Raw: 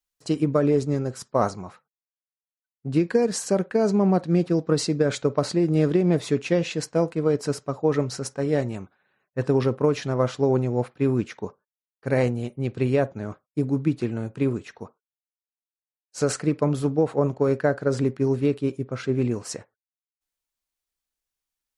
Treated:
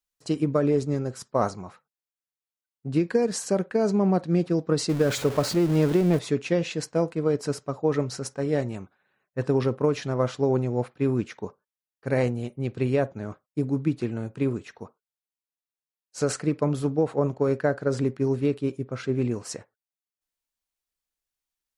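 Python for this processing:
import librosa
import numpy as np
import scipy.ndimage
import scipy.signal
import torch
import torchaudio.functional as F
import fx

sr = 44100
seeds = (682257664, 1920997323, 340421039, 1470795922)

y = fx.zero_step(x, sr, step_db=-28.0, at=(4.89, 6.19))
y = y * 10.0 ** (-2.0 / 20.0)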